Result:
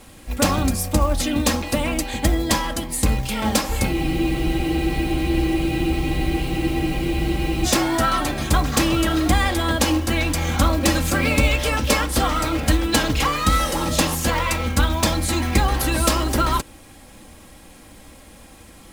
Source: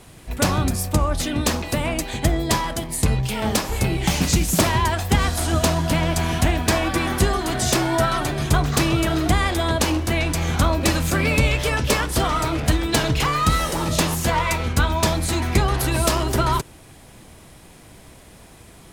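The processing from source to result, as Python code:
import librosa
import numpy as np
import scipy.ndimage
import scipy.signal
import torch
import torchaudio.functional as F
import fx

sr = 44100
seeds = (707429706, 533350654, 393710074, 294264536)

y = fx.quant_companded(x, sr, bits=6)
y = y + 0.55 * np.pad(y, (int(3.7 * sr / 1000.0), 0))[:len(y)]
y = fx.spec_freeze(y, sr, seeds[0], at_s=3.95, hold_s=3.69)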